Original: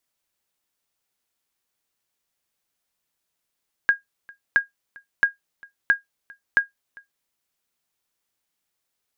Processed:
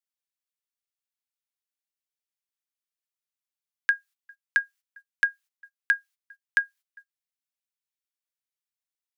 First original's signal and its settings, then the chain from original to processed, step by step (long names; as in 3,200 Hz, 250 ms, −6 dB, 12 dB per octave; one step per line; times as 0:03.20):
ping with an echo 1,630 Hz, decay 0.14 s, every 0.67 s, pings 5, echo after 0.40 s, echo −26.5 dB −8 dBFS
noise gate −47 dBFS, range −15 dB
high-pass filter 1,500 Hz 12 dB per octave